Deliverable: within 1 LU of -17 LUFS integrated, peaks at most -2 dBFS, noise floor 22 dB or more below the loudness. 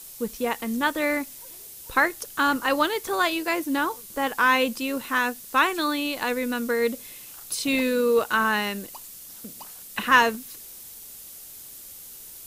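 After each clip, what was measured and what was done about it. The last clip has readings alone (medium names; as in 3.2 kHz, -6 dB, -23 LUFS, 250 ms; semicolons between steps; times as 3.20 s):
noise floor -43 dBFS; noise floor target -46 dBFS; loudness -24.0 LUFS; peak level -5.0 dBFS; loudness target -17.0 LUFS
-> noise print and reduce 6 dB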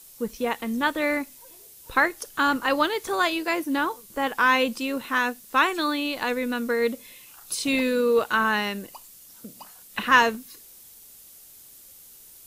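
noise floor -49 dBFS; loudness -24.0 LUFS; peak level -5.5 dBFS; loudness target -17.0 LUFS
-> trim +7 dB; peak limiter -2 dBFS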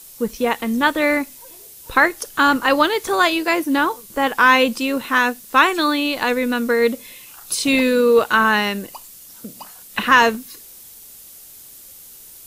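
loudness -17.5 LUFS; peak level -2.0 dBFS; noise floor -42 dBFS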